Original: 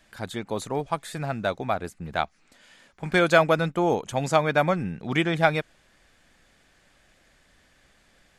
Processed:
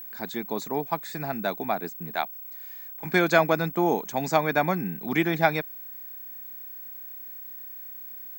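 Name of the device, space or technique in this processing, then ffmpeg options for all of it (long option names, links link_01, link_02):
old television with a line whistle: -filter_complex "[0:a]highpass=frequency=170:width=0.5412,highpass=frequency=170:width=1.3066,equalizer=frequency=540:width_type=q:width=4:gain=-8,equalizer=frequency=1300:width_type=q:width=4:gain=-6,equalizer=frequency=3000:width_type=q:width=4:gain=-10,lowpass=frequency=7300:width=0.5412,lowpass=frequency=7300:width=1.3066,aeval=exprs='val(0)+0.0112*sin(2*PI*15734*n/s)':channel_layout=same,asettb=1/sr,asplit=3[link_01][link_02][link_03];[link_01]atrim=end=2.114[link_04];[link_02]atrim=start=2.11:end=3.05,asetpts=PTS-STARTPTS,afade=type=in:duration=0.004:curve=qsin,afade=type=out:start_time=0.936:duration=0.004:curve=qsin,highpass=frequency=460:poles=1[link_05];[link_03]atrim=start=3.046[link_06];[link_04][link_05]acrossfade=duration=0.004:curve1=hsin:curve2=qsin[link_07];[link_07][link_06]acrossfade=duration=0.004:curve1=qsin:curve2=hsin,volume=1.5dB"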